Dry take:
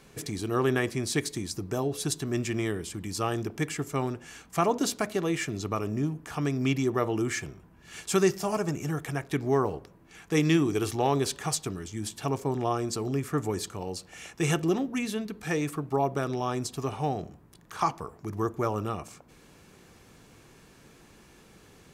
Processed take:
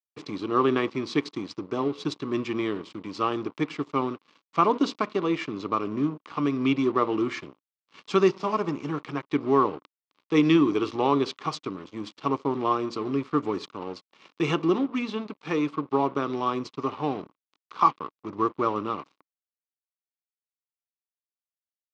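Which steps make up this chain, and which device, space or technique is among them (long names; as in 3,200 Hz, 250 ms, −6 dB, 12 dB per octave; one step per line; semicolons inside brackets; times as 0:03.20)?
blown loudspeaker (dead-zone distortion −42 dBFS; loudspeaker in its box 200–4,300 Hz, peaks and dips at 290 Hz +5 dB, 700 Hz −7 dB, 1,100 Hz +9 dB, 1,700 Hz −8 dB)
level +3.5 dB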